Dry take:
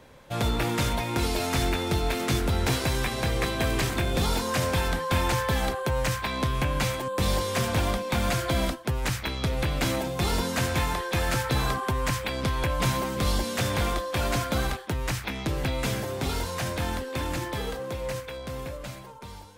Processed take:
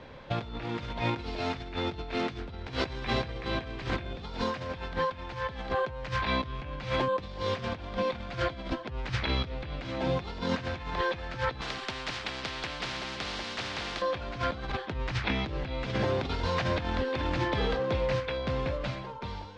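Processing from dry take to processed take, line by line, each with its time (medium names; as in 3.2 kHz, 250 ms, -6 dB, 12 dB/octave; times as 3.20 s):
11.61–14.02 s: spectrum-flattening compressor 4:1
whole clip: low-pass 4.5 kHz 24 dB/octave; compressor with a negative ratio -31 dBFS, ratio -0.5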